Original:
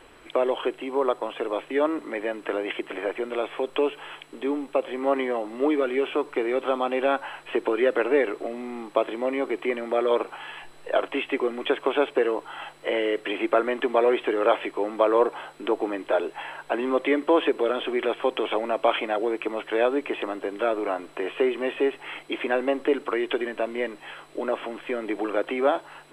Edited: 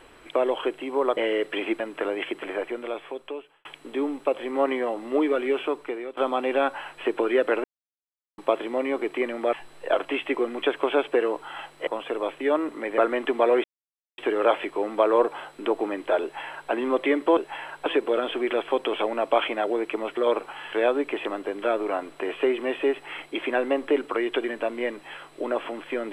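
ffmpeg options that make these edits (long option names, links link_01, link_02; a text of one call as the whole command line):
ffmpeg -i in.wav -filter_complex "[0:a]asplit=15[link_01][link_02][link_03][link_04][link_05][link_06][link_07][link_08][link_09][link_10][link_11][link_12][link_13][link_14][link_15];[link_01]atrim=end=1.172[link_16];[link_02]atrim=start=12.898:end=13.532[link_17];[link_03]atrim=start=2.278:end=4.13,asetpts=PTS-STARTPTS,afade=type=out:start_time=0.672:duration=1.18[link_18];[link_04]atrim=start=4.13:end=6.65,asetpts=PTS-STARTPTS,afade=type=in:duration=0.004:curve=hsin,afade=type=out:start_time=1.94:duration=0.58:silence=0.158489[link_19];[link_05]atrim=start=6.65:end=8.12,asetpts=PTS-STARTPTS,afade=type=in:duration=0.004:curve=hsin:silence=0.158489,afade=type=out:start_time=1.466:duration=0.004:curve=hsin[link_20];[link_06]atrim=start=8.12:end=8.86,asetpts=PTS-STARTPTS,volume=0[link_21];[link_07]atrim=start=8.86:end=10.012,asetpts=PTS-STARTPTS,afade=type=in:duration=0.004:curve=hsin[link_22];[link_08]atrim=start=10.558:end=12.902[link_23];[link_09]atrim=start=1.168:end=2.282[link_24];[link_10]atrim=start=13.528:end=14.19,asetpts=PTS-STARTPTS,afade=type=out:start_time=0.658:duration=0.004:curve=hsin,apad=pad_dur=0.54[link_25];[link_11]atrim=start=14.19:end=17.382,asetpts=PTS-STARTPTS,afade=type=in:duration=0.004:curve=hsin[link_26];[link_12]atrim=start=16.228:end=16.722[link_27];[link_13]atrim=start=17.378:end=19.692[link_28];[link_14]atrim=start=10.008:end=10.562[link_29];[link_15]atrim=start=19.688[link_30];[link_16][link_17]acrossfade=duration=0.004:curve1=hsin:curve2=hsin[link_31];[link_18][link_19][link_20][link_21][link_22]concat=n=5:v=0:a=1[link_32];[link_31][link_32]acrossfade=duration=0.004:curve1=hsin:curve2=hsin[link_33];[link_33][link_23]acrossfade=duration=0.004:curve1=hsin:curve2=hsin[link_34];[link_34][link_24]acrossfade=duration=0.004:curve1=hsin:curve2=hsin[link_35];[link_25][link_26]concat=n=2:v=0:a=1[link_36];[link_35][link_36]acrossfade=duration=0.004:curve1=hsin:curve2=hsin[link_37];[link_37][link_27]acrossfade=duration=0.004:curve1=hsin:curve2=hsin[link_38];[link_38][link_28]acrossfade=duration=0.004:curve1=hsin:curve2=hsin[link_39];[link_39][link_29]acrossfade=duration=0.004:curve1=hsin:curve2=hsin[link_40];[link_40][link_30]acrossfade=duration=0.004:curve1=hsin:curve2=hsin" out.wav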